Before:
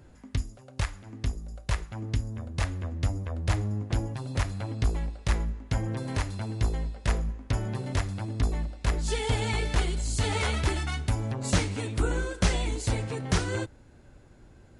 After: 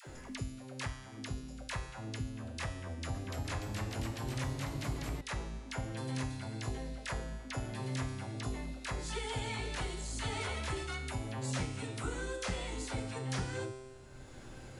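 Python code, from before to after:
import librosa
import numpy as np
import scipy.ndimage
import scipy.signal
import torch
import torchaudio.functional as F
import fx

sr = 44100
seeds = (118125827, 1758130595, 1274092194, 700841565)

y = fx.low_shelf(x, sr, hz=290.0, db=-5.5)
y = fx.comb_fb(y, sr, f0_hz=130.0, decay_s=0.98, harmonics='all', damping=0.0, mix_pct=80)
y = fx.dispersion(y, sr, late='lows', ms=66.0, hz=650.0)
y = fx.echo_pitch(y, sr, ms=303, semitones=1, count=3, db_per_echo=-3.0, at=(2.84, 5.21))
y = fx.band_squash(y, sr, depth_pct=70)
y = F.gain(torch.from_numpy(y), 4.5).numpy()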